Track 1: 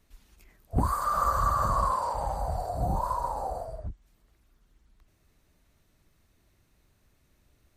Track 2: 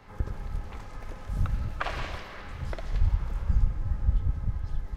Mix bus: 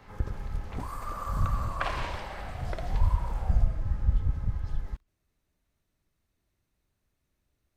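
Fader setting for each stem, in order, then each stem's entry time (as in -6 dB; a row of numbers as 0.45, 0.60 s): -11.5, 0.0 dB; 0.00, 0.00 s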